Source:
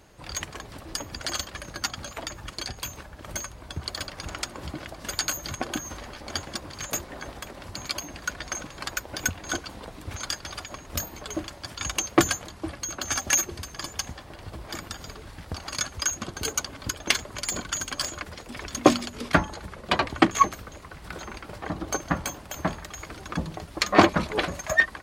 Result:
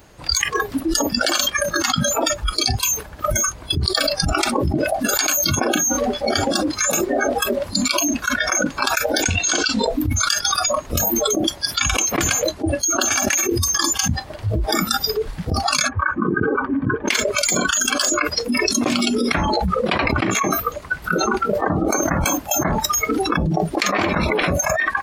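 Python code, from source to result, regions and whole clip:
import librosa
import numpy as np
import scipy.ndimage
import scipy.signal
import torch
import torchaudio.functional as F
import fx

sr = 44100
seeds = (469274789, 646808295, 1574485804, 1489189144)

y = fx.chain(x, sr, fx.lowpass(hz=8100.0, slope=24),
    fx.high_shelf(hz=2900.0, db=9.5), at=(9.22, 9.86))
y = fx.chain(y, sr, fx.lowpass(hz=1900.0, slope=24),
    fx.notch_comb(f0_hz=690.0), at=(15.88, 17.08))
y = fx.noise_reduce_blind(y, sr, reduce_db=25)
y = fx.dynamic_eq(y, sr, hz=2300.0, q=2.4, threshold_db=-44.0, ratio=4.0, max_db=7)
y = fx.env_flatten(y, sr, amount_pct=100)
y = F.gain(torch.from_numpy(y), -8.5).numpy()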